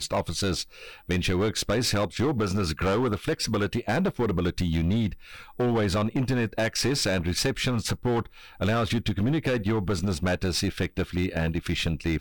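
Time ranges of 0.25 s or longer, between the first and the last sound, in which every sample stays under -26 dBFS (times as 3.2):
0.62–1.1
5.13–5.6
8.22–8.61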